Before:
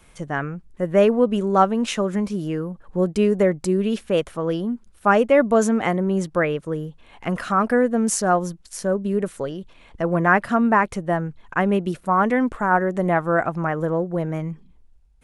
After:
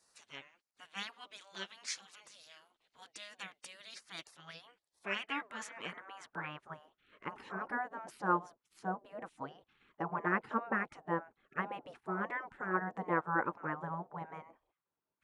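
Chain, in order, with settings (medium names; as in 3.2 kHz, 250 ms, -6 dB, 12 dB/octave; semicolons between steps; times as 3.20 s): wow and flutter 20 cents; band-pass sweep 3.4 kHz -> 670 Hz, 4.28–7.40 s; spectral gate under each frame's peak -15 dB weak; trim +3.5 dB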